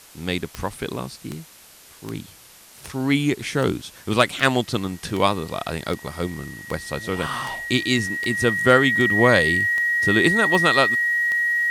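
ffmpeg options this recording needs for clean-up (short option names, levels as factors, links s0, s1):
-af "adeclick=t=4,bandreject=f=1900:w=30,afwtdn=0.005"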